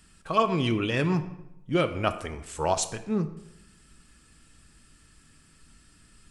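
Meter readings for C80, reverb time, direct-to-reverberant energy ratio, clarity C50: 14.5 dB, 0.85 s, 9.0 dB, 13.0 dB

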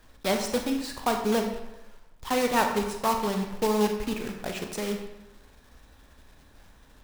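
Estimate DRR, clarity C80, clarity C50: 4.0 dB, 8.0 dB, 6.0 dB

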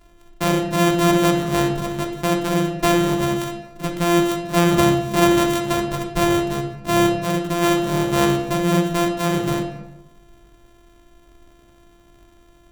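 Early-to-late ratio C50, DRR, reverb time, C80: 6.0 dB, 1.5 dB, 1.0 s, 8.5 dB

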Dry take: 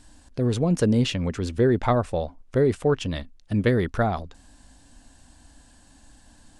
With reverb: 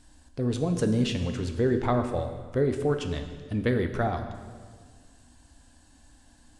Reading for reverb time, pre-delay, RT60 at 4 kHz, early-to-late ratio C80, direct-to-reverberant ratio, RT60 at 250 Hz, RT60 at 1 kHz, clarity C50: 1.7 s, 3 ms, 1.5 s, 9.5 dB, 5.5 dB, 1.9 s, 1.6 s, 8.0 dB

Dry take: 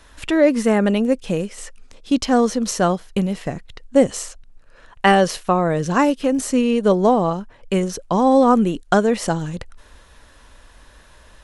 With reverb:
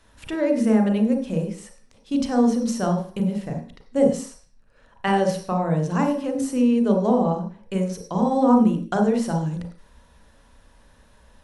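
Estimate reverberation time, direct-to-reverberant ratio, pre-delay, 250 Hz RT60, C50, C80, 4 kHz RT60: 0.45 s, 2.0 dB, 31 ms, 0.55 s, 6.0 dB, 11.5 dB, n/a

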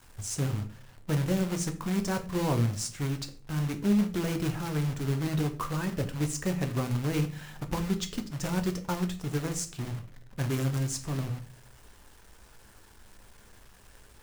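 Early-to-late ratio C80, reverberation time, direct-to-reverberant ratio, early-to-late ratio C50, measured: 18.0 dB, 0.45 s, 6.0 dB, 13.5 dB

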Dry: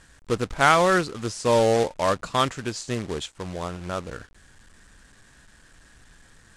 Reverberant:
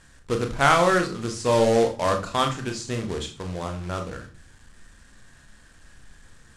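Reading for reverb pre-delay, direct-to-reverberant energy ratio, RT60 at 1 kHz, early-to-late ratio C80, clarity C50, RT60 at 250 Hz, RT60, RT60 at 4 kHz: 29 ms, 4.5 dB, 0.40 s, 16.5 dB, 11.5 dB, 0.70 s, 0.40 s, 0.35 s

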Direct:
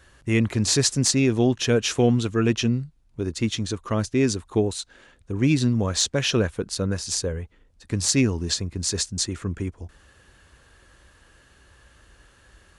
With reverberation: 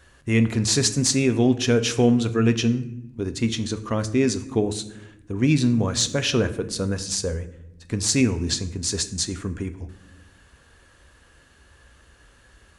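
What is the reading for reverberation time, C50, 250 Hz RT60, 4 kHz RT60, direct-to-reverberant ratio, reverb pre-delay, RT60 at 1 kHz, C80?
0.80 s, 14.0 dB, 1.5 s, 0.50 s, 9.5 dB, 4 ms, 0.65 s, 17.0 dB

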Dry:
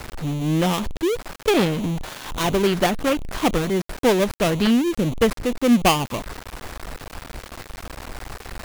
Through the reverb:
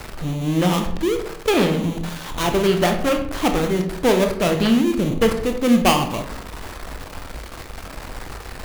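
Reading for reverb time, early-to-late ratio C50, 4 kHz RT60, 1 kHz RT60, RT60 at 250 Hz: 0.75 s, 8.0 dB, 0.40 s, 0.70 s, 0.90 s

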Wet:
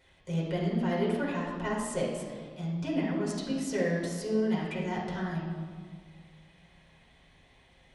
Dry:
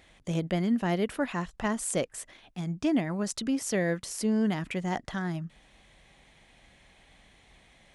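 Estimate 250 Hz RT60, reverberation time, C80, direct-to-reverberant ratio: 2.2 s, 1.9 s, 3.5 dB, -5.5 dB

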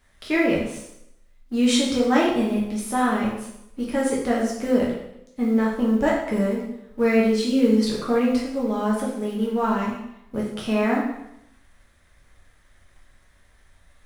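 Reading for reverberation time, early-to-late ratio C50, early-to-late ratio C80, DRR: 0.80 s, 3.0 dB, 6.5 dB, -4.5 dB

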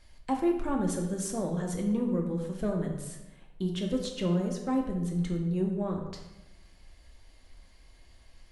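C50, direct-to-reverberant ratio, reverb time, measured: 5.0 dB, 0.5 dB, 1.0 s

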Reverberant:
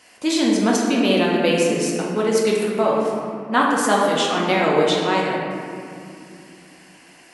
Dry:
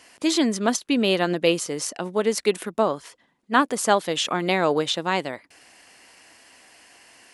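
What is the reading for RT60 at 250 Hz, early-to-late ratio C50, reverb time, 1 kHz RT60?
4.0 s, -0.5 dB, 2.5 s, 2.3 s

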